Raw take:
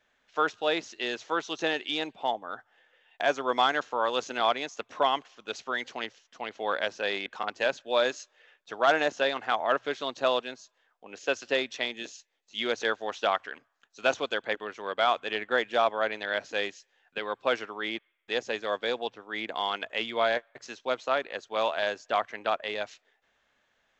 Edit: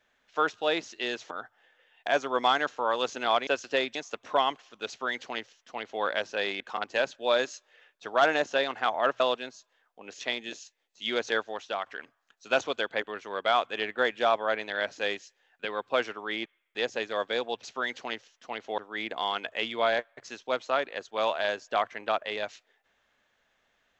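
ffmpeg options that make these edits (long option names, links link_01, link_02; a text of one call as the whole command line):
ffmpeg -i in.wav -filter_complex "[0:a]asplit=9[link_01][link_02][link_03][link_04][link_05][link_06][link_07][link_08][link_09];[link_01]atrim=end=1.312[link_10];[link_02]atrim=start=2.448:end=4.612[link_11];[link_03]atrim=start=11.248:end=11.732[link_12];[link_04]atrim=start=4.608:end=9.862[link_13];[link_05]atrim=start=10.248:end=11.252[link_14];[link_06]atrim=start=11.728:end=13.39,asetpts=PTS-STARTPTS,afade=type=out:start_time=1.202:duration=0.46:curve=qua:silence=0.446684[link_15];[link_07]atrim=start=13.39:end=19.162,asetpts=PTS-STARTPTS,afade=type=in:duration=0.004:curve=hsin:silence=0.446684[link_16];[link_08]atrim=start=5.538:end=6.692[link_17];[link_09]atrim=start=19.158[link_18];[link_10][link_11]acrossfade=duration=0.004:curve1=hsin:curve2=hsin[link_19];[link_19][link_12]acrossfade=duration=0.004:curve1=hsin:curve2=hsin[link_20];[link_20][link_13]acrossfade=duration=0.004:curve1=hsin:curve2=hsin[link_21];[link_21][link_14]acrossfade=duration=0.004:curve1=hsin:curve2=hsin[link_22];[link_15][link_16]concat=n=2:v=0:a=1[link_23];[link_22][link_23]acrossfade=duration=0.004:curve1=hsin:curve2=hsin[link_24];[link_24][link_17]acrossfade=duration=0.004:curve1=hsin:curve2=hsin[link_25];[link_25][link_18]acrossfade=duration=0.004:curve1=hsin:curve2=hsin" out.wav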